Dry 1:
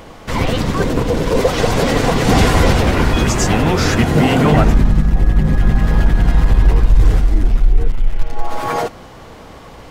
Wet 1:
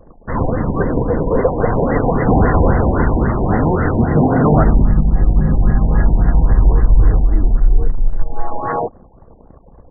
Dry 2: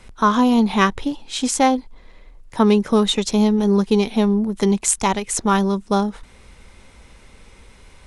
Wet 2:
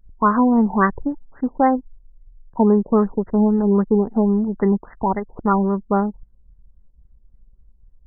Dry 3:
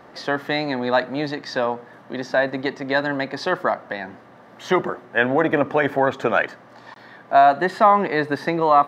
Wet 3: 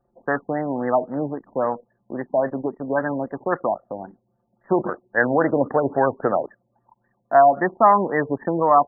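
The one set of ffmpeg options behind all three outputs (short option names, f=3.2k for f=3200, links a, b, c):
-af "anlmdn=25.1,afftfilt=real='re*lt(b*sr/1024,980*pow(2100/980,0.5+0.5*sin(2*PI*3.7*pts/sr)))':imag='im*lt(b*sr/1024,980*pow(2100/980,0.5+0.5*sin(2*PI*3.7*pts/sr)))':win_size=1024:overlap=0.75"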